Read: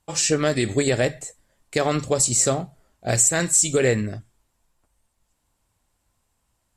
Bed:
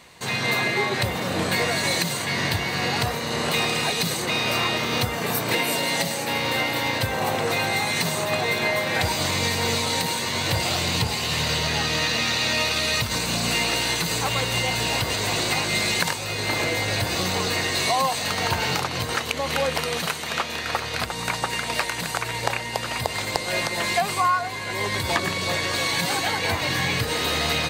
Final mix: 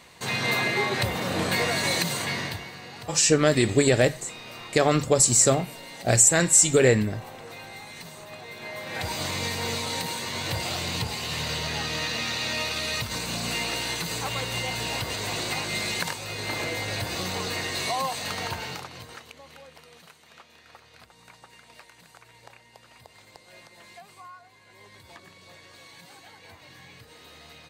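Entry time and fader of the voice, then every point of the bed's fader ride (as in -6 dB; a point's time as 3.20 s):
3.00 s, +1.0 dB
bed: 2.26 s -2 dB
2.83 s -18 dB
8.50 s -18 dB
9.15 s -6 dB
18.35 s -6 dB
19.63 s -25 dB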